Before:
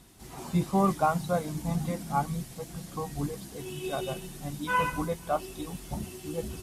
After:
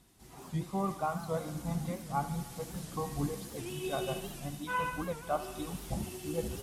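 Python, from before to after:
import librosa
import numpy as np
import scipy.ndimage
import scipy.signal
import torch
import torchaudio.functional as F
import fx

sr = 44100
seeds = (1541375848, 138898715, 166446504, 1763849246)

y = fx.rider(x, sr, range_db=4, speed_s=0.5)
y = fx.echo_thinned(y, sr, ms=74, feedback_pct=80, hz=470.0, wet_db=-12.0)
y = fx.record_warp(y, sr, rpm=78.0, depth_cents=160.0)
y = F.gain(torch.from_numpy(y), -5.0).numpy()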